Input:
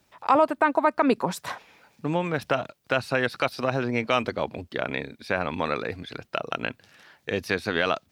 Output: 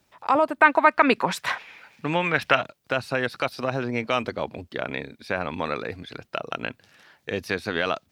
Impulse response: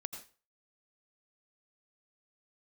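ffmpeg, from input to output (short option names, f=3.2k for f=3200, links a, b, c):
-filter_complex "[0:a]asettb=1/sr,asplit=3[a][b][c];[a]atrim=end=0.614[d];[b]atrim=start=0.61:end=2.63,asetpts=PTS-STARTPTS,afade=t=in:d=0.004:c=qsin,afade=t=out:st=2.016:d=0.004:c=qsin,equalizer=f=2.2k:w=0.65:g=12.5[e];[c]atrim=start=2.626[f];[d][e]acrossfade=d=0.004:c1=hsin:c2=qsin[g];[g][f]acrossfade=d=0.004:c1=qsin:c2=hsin,volume=-1dB"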